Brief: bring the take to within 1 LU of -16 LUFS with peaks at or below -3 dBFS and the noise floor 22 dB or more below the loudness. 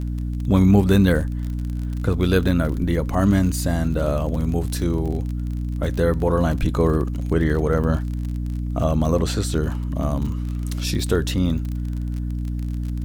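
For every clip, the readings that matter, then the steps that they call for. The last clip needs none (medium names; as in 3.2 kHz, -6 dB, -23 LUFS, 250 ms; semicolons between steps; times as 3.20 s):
tick rate 39 per s; hum 60 Hz; highest harmonic 300 Hz; hum level -23 dBFS; loudness -22.0 LUFS; peak level -3.5 dBFS; loudness target -16.0 LUFS
-> de-click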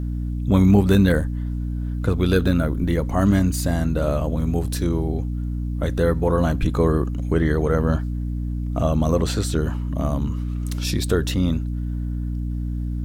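tick rate 1.1 per s; hum 60 Hz; highest harmonic 300 Hz; hum level -23 dBFS
-> de-hum 60 Hz, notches 5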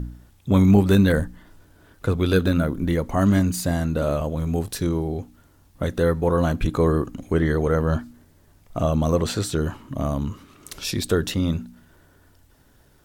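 hum not found; loudness -22.5 LUFS; peak level -5.0 dBFS; loudness target -16.0 LUFS
-> trim +6.5 dB; peak limiter -3 dBFS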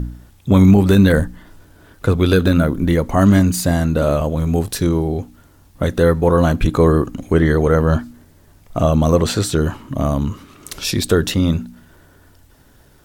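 loudness -16.5 LUFS; peak level -3.0 dBFS; noise floor -50 dBFS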